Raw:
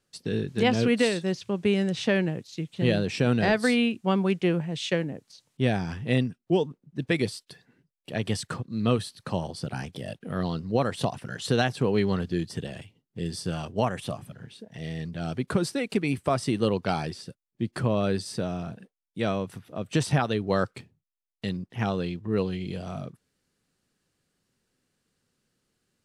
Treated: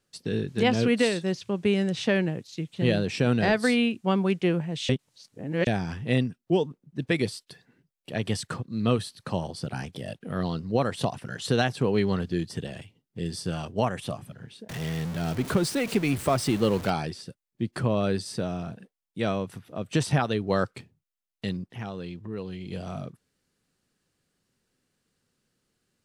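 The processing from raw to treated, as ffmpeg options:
ffmpeg -i in.wav -filter_complex "[0:a]asettb=1/sr,asplit=3[link_01][link_02][link_03];[link_01]atrim=end=14.694[link_04];[link_02]atrim=start=14.69:end=16.9,asetpts=PTS-STARTPTS,afade=type=in:duration=0.004:curve=qsin,afade=type=out:start_time=2.206:duration=0.004:curve=qsin,aeval=exprs='val(0)+0.5*0.0251*sgn(val(0))':channel_layout=same[link_05];[link_03]atrim=start=16.896[link_06];[link_04][link_05]acrossfade=duration=0.004:curve1=hsin:curve2=qsin[link_07];[link_07][link_06]acrossfade=duration=0.004:curve1=qsin:curve2=hsin,asettb=1/sr,asplit=3[link_08][link_09][link_10];[link_08]atrim=end=21.654[link_11];[link_09]atrim=start=21.65:end=22.72,asetpts=PTS-STARTPTS,afade=type=in:duration=0.004:curve=qsin,afade=type=out:start_time=1.066:duration=0.004:curve=qsin,acompressor=threshold=-37dB:ratio=2:attack=3.2:release=140:knee=1:detection=peak[link_12];[link_10]atrim=start=22.716[link_13];[link_11][link_12]acrossfade=duration=0.004:curve1=hsin:curve2=qsin[link_14];[link_14][link_13]acrossfade=duration=0.004:curve1=qsin:curve2=hsin,asplit=3[link_15][link_16][link_17];[link_15]atrim=end=4.892[link_18];[link_16]atrim=start=4.888:end=5.672,asetpts=PTS-STARTPTS,areverse[link_19];[link_17]atrim=start=5.668[link_20];[link_18][link_19]acrossfade=duration=0.004:curve1=hsin:curve2=hsin[link_21];[link_21][link_20]acrossfade=duration=0.004:curve1=hsin:curve2=hsin" out.wav

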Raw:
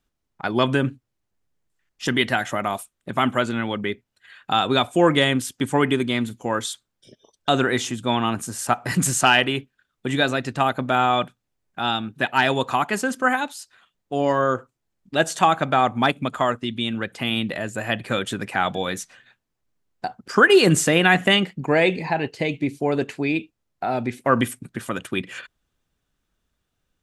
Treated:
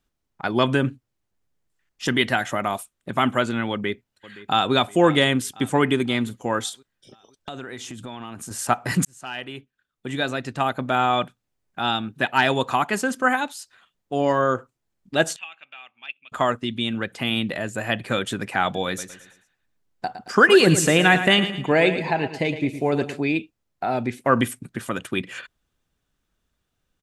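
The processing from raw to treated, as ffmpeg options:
ffmpeg -i in.wav -filter_complex "[0:a]asplit=2[link_01][link_02];[link_02]afade=type=in:start_time=3.71:duration=0.01,afade=type=out:start_time=4.74:duration=0.01,aecho=0:1:520|1040|1560|2080|2600:0.133352|0.0733437|0.040339|0.0221865|0.0122026[link_03];[link_01][link_03]amix=inputs=2:normalize=0,asettb=1/sr,asplit=3[link_04][link_05][link_06];[link_04]atrim=end=6.694[link_07];[link_05]atrim=start=6.69:end=8.51,asetpts=PTS-STARTPTS,afade=type=in:duration=0.004:curve=qsin,afade=type=out:start_time=1.816:duration=0.004:curve=qsin,acompressor=threshold=-32dB:ratio=6:attack=3.2:release=140:knee=1:detection=peak[link_08];[link_06]atrim=start=8.506[link_09];[link_07][link_08]acrossfade=duration=0.004:curve1=hsin:curve2=qsin[link_10];[link_10][link_09]acrossfade=duration=0.004:curve1=qsin:curve2=hsin,asettb=1/sr,asplit=3[link_11][link_12][link_13];[link_11]atrim=end=15.364[link_14];[link_12]atrim=start=15.36:end=16.32,asetpts=PTS-STARTPTS,afade=type=in:duration=0.004:curve=qsin,afade=type=out:start_time=0.956:duration=0.004:curve=qsin,bandpass=frequency=2700:width_type=q:width=13[link_15];[link_13]atrim=start=16.316[link_16];[link_14][link_15]acrossfade=duration=0.004:curve1=hsin:curve2=qsin[link_17];[link_17][link_16]acrossfade=duration=0.004:curve1=qsin:curve2=hsin,asettb=1/sr,asplit=3[link_18][link_19][link_20];[link_18]atrim=end=18.874[link_21];[link_19]atrim=start=18.87:end=23.2,asetpts=PTS-STARTPTS,afade=type=in:duration=0.004:curve=qsin,afade=type=out:start_time=4.326:duration=0.004:curve=qsin,aecho=1:1:111|222|333|444:0.282|0.113|0.0451|0.018,atrim=end_sample=190953[link_22];[link_20]atrim=start=23.196[link_23];[link_21][link_22]acrossfade=duration=0.004:curve1=hsin:curve2=qsin[link_24];[link_24][link_23]acrossfade=duration=0.004:curve1=qsin:curve2=hsin,asplit=2[link_25][link_26];[link_25]atrim=end=9.05,asetpts=PTS-STARTPTS,afade=type=out:start_time=9.046:duration=0.004:curve=hsin[link_27];[link_26]atrim=start=9.05,asetpts=PTS-STARTPTS,afade=type=in:duration=2.94:curve=qsin[link_28];[link_27][link_28]concat=n=2:v=0:a=1" out.wav

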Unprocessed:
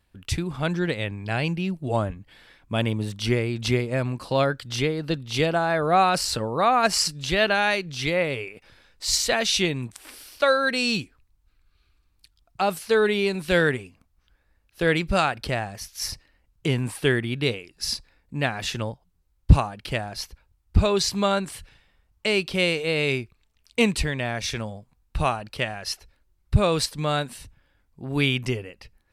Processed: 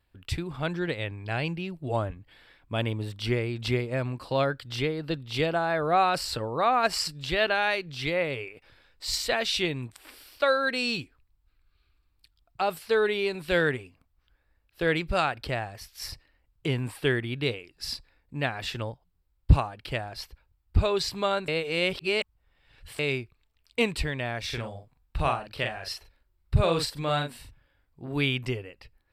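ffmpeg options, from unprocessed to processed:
ffmpeg -i in.wav -filter_complex "[0:a]asettb=1/sr,asplit=3[link_01][link_02][link_03];[link_01]atrim=end=24.464[link_04];[link_02]atrim=start=24.46:end=28.14,asetpts=PTS-STARTPTS,afade=type=in:duration=0.004:curve=qsin,afade=type=out:start_time=3.676:duration=0.004:curve=qsin,asplit=2[link_05][link_06];[link_06]adelay=42,volume=-5dB[link_07];[link_05][link_07]amix=inputs=2:normalize=0,atrim=end_sample=162288[link_08];[link_03]atrim=start=28.136[link_09];[link_04][link_08]acrossfade=duration=0.004:curve1=hsin:curve2=qsin[link_10];[link_10][link_09]acrossfade=duration=0.004:curve1=qsin:curve2=hsin,asplit=3[link_11][link_12][link_13];[link_11]atrim=end=21.482[link_14];[link_12]atrim=start=21.478:end=22.992,asetpts=PTS-STARTPTS,areverse[link_15];[link_13]atrim=start=22.988[link_16];[link_14][link_15]acrossfade=duration=0.004:curve1=hsin:curve2=hsin[link_17];[link_17][link_16]acrossfade=duration=0.004:curve1=hsin:curve2=hsin,equalizer=frequency=200:width_type=o:width=0.33:gain=-8,equalizer=frequency=6300:width_type=o:width=0.33:gain=-10,equalizer=frequency=10000:width_type=o:width=0.33:gain=-8,volume=-3.5dB" out.wav

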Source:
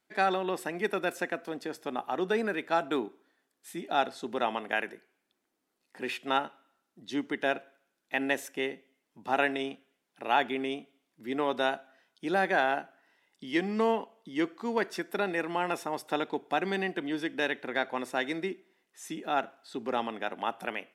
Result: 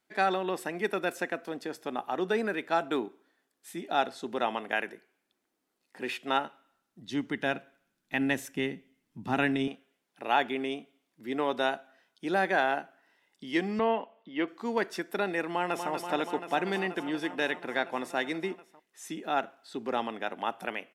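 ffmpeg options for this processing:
ffmpeg -i in.wav -filter_complex "[0:a]asettb=1/sr,asplit=3[link_01][link_02][link_03];[link_01]atrim=end=6.384[link_04];[link_02]atrim=start=6.38:end=9.68,asetpts=PTS-STARTPTS,afade=type=in:duration=0.004:curve=qsin,afade=type=out:start_time=3.296:duration=0.004:curve=qsin,asubboost=boost=11:cutoff=190[link_05];[link_03]atrim=start=9.676[link_06];[link_04][link_05]acrossfade=duration=0.004:curve1=hsin:curve2=qsin[link_07];[link_07][link_06]acrossfade=duration=0.004:curve1=qsin:curve2=hsin,asettb=1/sr,asplit=3[link_08][link_09][link_10];[link_08]atrim=end=13.794[link_11];[link_09]atrim=start=13.79:end=14.48,asetpts=PTS-STARTPTS,afade=type=in:duration=0.004:curve=qsin,afade=type=out:start_time=0.686:duration=0.004:curve=qsin,highpass=200,equalizer=frequency=400:width_type=q:width=4:gain=-5,equalizer=frequency=600:width_type=q:width=4:gain=5,equalizer=frequency=2700:width_type=q:width=4:gain=3,lowpass=frequency=3400:width=0.5412,lowpass=frequency=3400:width=1.3066[link_12];[link_10]atrim=start=14.476[link_13];[link_11][link_12]acrossfade=duration=0.004:curve1=hsin:curve2=qsin[link_14];[link_14][link_13]acrossfade=duration=0.004:curve1=qsin:curve2=hsin,asplit=2[link_15][link_16];[link_16]afade=type=in:start_time=15.51:duration=0.01,afade=type=out:start_time=15.91:duration=0.01,aecho=0:1:240|480|720|960|1200|1440|1680|1920|2160|2400|2640|2880:0.421697|0.358442|0.304676|0.258974|0.220128|0.187109|0.159043|0.135186|0.114908|0.0976721|0.0830212|0.0705681[link_17];[link_15][link_17]amix=inputs=2:normalize=0" out.wav

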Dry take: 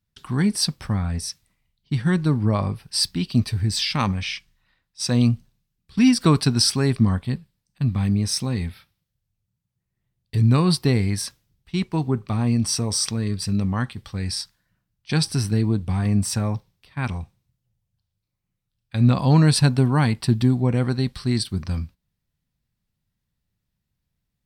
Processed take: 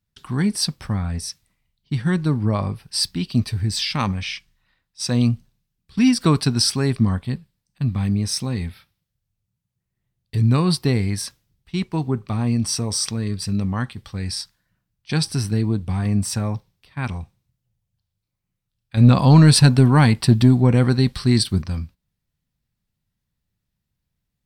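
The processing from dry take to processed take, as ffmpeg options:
ffmpeg -i in.wav -filter_complex "[0:a]asettb=1/sr,asplit=3[link_01][link_02][link_03];[link_01]atrim=end=18.974[link_04];[link_02]atrim=start=18.97:end=21.62,asetpts=PTS-STARTPTS,afade=type=in:duration=0.004:curve=qsin,afade=type=out:start_time=2.646:duration=0.004:curve=qsin,acontrast=48[link_05];[link_03]atrim=start=21.616[link_06];[link_04][link_05]acrossfade=duration=0.004:curve1=hsin:curve2=qsin[link_07];[link_07][link_06]acrossfade=duration=0.004:curve1=qsin:curve2=hsin" out.wav

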